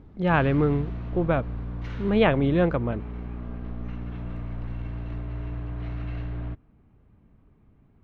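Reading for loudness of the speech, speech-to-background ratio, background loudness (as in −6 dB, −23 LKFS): −24.0 LKFS, 11.5 dB, −35.5 LKFS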